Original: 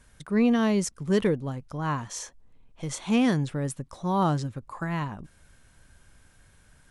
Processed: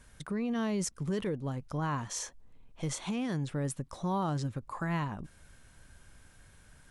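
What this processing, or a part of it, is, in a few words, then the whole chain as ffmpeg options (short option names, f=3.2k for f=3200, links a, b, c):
stacked limiters: -af "alimiter=limit=-17dB:level=0:latency=1:release=359,alimiter=limit=-22dB:level=0:latency=1:release=11,alimiter=level_in=1.5dB:limit=-24dB:level=0:latency=1:release=182,volume=-1.5dB"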